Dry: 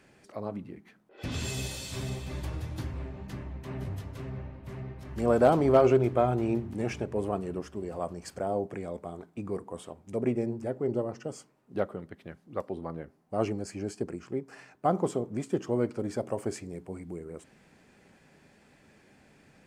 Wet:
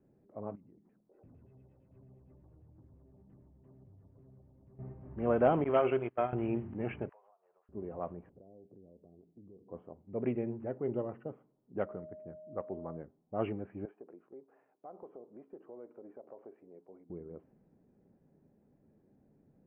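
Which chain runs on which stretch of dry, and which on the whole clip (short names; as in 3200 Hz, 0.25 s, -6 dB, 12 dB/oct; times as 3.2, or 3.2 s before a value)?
0.55–4.79 compressor 4:1, threshold -53 dBFS + LFO low-pass saw down 8.8 Hz 630–5900 Hz
5.64–6.33 gate -26 dBFS, range -24 dB + tilt +2.5 dB/oct
7.09–7.69 inverse Chebyshev high-pass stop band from 300 Hz, stop band 50 dB + compressor 16:1, threshold -51 dBFS
8.29–9.69 Chebyshev low-pass 500 Hz + compressor 4:1, threshold -49 dBFS
11.85–12.96 running mean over 10 samples + whine 620 Hz -41 dBFS
13.85–17.1 HPF 500 Hz + compressor 3:1, threshold -41 dBFS
whole clip: steep low-pass 3100 Hz 96 dB/oct; low-pass opened by the level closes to 420 Hz, open at -21.5 dBFS; bell 61 Hz -6 dB 0.63 oct; gain -5 dB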